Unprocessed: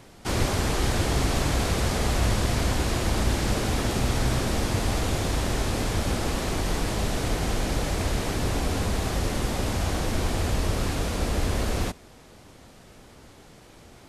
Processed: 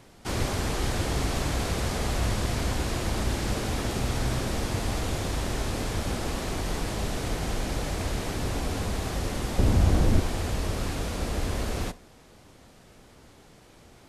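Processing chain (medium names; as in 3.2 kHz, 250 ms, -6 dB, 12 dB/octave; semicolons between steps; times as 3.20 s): 9.58–10.20 s: bass shelf 440 Hz +11 dB; on a send: reverberation RT60 0.45 s, pre-delay 27 ms, DRR 18 dB; on the sum: trim -3.5 dB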